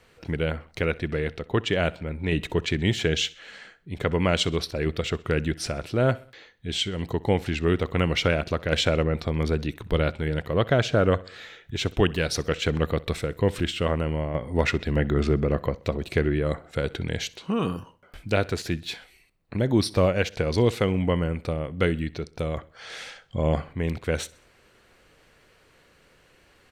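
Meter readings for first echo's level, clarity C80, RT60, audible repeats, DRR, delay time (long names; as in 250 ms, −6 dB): −22.0 dB, no reverb audible, no reverb audible, 3, no reverb audible, 64 ms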